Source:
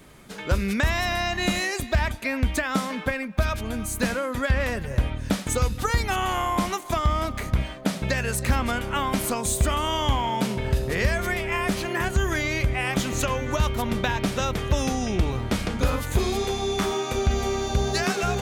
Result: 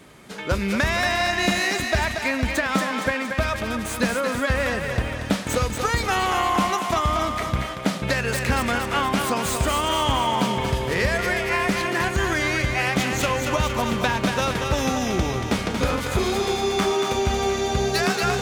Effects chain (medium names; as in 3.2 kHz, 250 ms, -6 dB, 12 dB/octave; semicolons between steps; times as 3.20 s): tracing distortion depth 0.082 ms; high-pass 120 Hz 6 dB/octave; treble shelf 12 kHz -8.5 dB; thinning echo 232 ms, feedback 60%, high-pass 420 Hz, level -5 dB; trim +3 dB